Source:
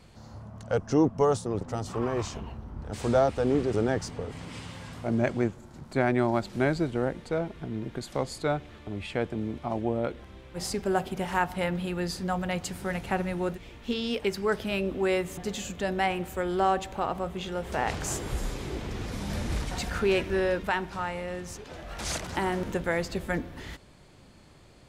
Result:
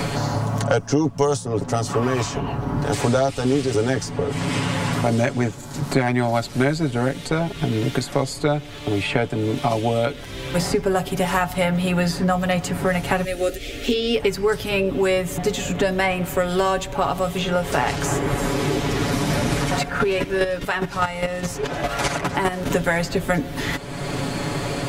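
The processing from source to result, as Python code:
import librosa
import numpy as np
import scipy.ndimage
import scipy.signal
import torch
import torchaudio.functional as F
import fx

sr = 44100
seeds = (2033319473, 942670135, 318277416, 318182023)

y = fx.fixed_phaser(x, sr, hz=400.0, stages=4, at=(13.24, 14.16))
y = fx.chopper(y, sr, hz=4.9, depth_pct=65, duty_pct=15, at=(19.78, 22.69), fade=0.02)
y = fx.high_shelf(y, sr, hz=5800.0, db=5.5)
y = y + 0.75 * np.pad(y, (int(7.1 * sr / 1000.0), 0))[:len(y)]
y = fx.band_squash(y, sr, depth_pct=100)
y = y * librosa.db_to_amplitude(6.0)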